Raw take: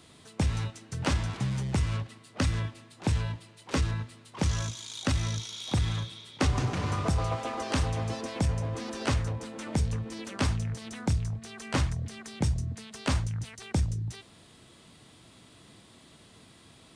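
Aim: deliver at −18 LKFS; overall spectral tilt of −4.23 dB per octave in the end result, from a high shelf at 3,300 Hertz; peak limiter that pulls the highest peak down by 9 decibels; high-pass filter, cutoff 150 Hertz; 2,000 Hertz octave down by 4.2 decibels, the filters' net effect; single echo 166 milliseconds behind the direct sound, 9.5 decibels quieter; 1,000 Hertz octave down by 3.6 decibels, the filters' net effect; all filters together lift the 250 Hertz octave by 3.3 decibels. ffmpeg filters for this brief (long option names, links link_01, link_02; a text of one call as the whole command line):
ffmpeg -i in.wav -af "highpass=150,equalizer=frequency=250:width_type=o:gain=5.5,equalizer=frequency=1000:width_type=o:gain=-4,equalizer=frequency=2000:width_type=o:gain=-7,highshelf=frequency=3300:gain=7.5,alimiter=limit=-22dB:level=0:latency=1,aecho=1:1:166:0.335,volume=17dB" out.wav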